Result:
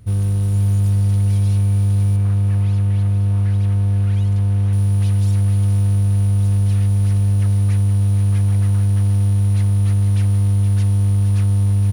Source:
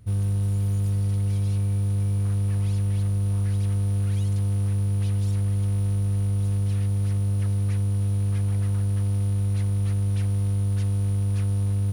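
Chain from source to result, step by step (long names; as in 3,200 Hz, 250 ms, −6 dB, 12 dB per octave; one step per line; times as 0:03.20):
0:02.16–0:04.73: bass and treble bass −1 dB, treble −10 dB
single-tap delay 469 ms −9.5 dB
level +6 dB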